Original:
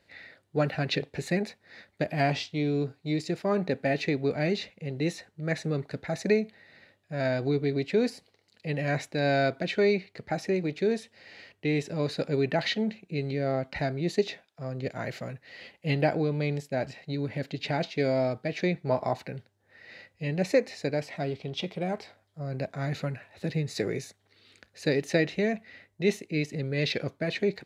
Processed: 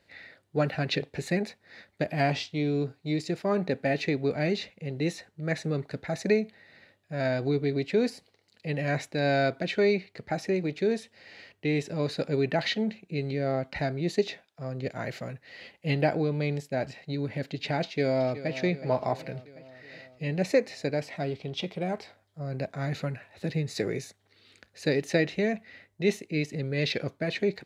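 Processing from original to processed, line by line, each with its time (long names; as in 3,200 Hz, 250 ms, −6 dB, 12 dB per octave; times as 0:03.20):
0:17.83–0:18.56: delay throw 370 ms, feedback 65%, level −13.5 dB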